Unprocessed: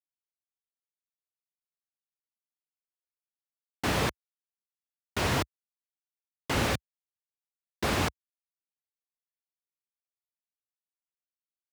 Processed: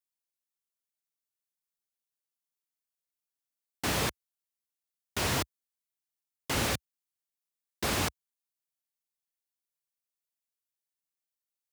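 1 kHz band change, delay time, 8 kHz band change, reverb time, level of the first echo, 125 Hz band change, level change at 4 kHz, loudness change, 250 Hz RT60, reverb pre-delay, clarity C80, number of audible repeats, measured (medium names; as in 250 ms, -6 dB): -3.0 dB, no echo, +3.5 dB, no reverb, no echo, -3.5 dB, +0.5 dB, -1.5 dB, no reverb, no reverb, no reverb, no echo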